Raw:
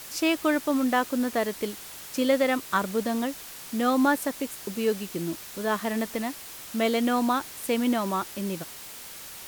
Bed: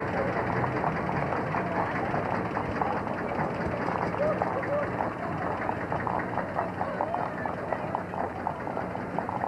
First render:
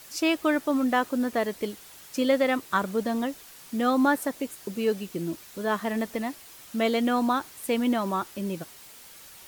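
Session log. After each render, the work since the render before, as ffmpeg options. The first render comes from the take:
-af "afftdn=nr=7:nf=-42"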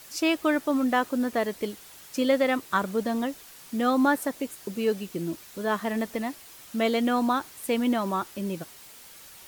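-af anull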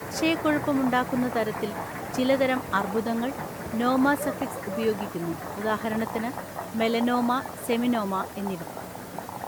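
-filter_complex "[1:a]volume=0.531[s0];[0:a][s0]amix=inputs=2:normalize=0"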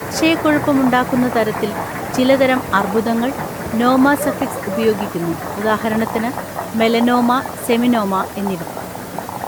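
-af "volume=3.16,alimiter=limit=0.708:level=0:latency=1"

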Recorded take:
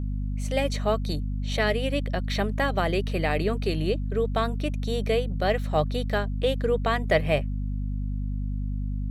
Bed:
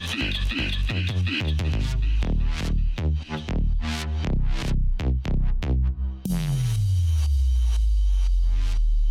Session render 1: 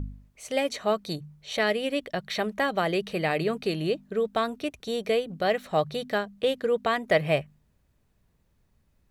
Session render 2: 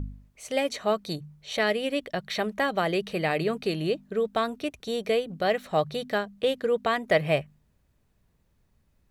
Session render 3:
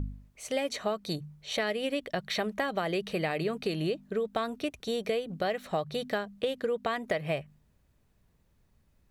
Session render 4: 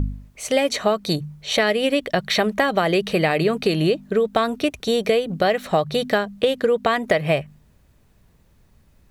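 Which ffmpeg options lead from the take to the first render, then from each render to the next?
-af "bandreject=f=50:t=h:w=4,bandreject=f=100:t=h:w=4,bandreject=f=150:t=h:w=4,bandreject=f=200:t=h:w=4,bandreject=f=250:t=h:w=4"
-af anull
-af "acompressor=threshold=0.0501:ratio=12"
-af "volume=3.76"

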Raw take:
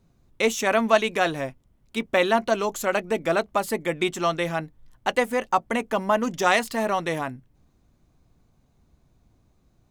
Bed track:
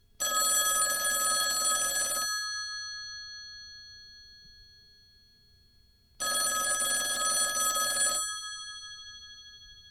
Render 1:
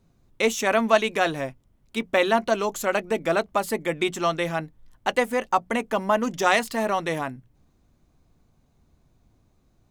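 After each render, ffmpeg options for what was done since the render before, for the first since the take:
-af "bandreject=f=60:t=h:w=6,bandreject=f=120:t=h:w=6,bandreject=f=180:t=h:w=6"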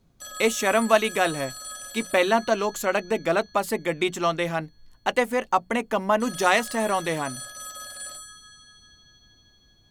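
-filter_complex "[1:a]volume=0.316[s0];[0:a][s0]amix=inputs=2:normalize=0"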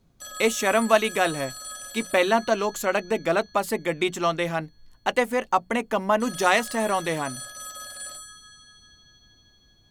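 -af anull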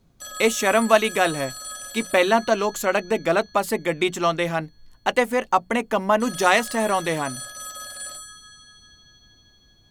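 -af "volume=1.33"

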